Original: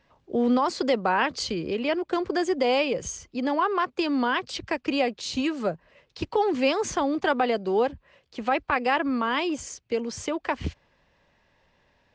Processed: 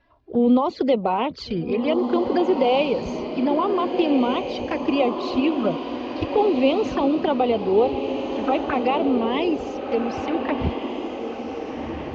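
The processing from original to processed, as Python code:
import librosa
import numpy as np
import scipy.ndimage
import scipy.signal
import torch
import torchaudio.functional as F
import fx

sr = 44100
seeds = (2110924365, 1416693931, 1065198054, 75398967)

y = fx.spec_quant(x, sr, step_db=15)
y = scipy.signal.sosfilt(scipy.signal.butter(4, 4800.0, 'lowpass', fs=sr, output='sos'), y)
y = fx.high_shelf(y, sr, hz=2500.0, db=-7.0)
y = fx.env_flanger(y, sr, rest_ms=3.0, full_db=-22.5)
y = fx.echo_diffused(y, sr, ms=1511, feedback_pct=51, wet_db=-6.0)
y = y * librosa.db_to_amplitude(6.0)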